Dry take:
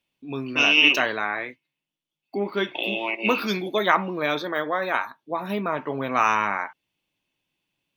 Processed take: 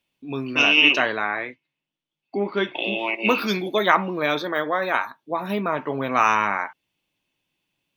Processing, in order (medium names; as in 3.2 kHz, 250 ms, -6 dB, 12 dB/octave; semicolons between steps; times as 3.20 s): 0.62–2.99 s: Bessel low-pass 4.3 kHz, order 2; trim +2 dB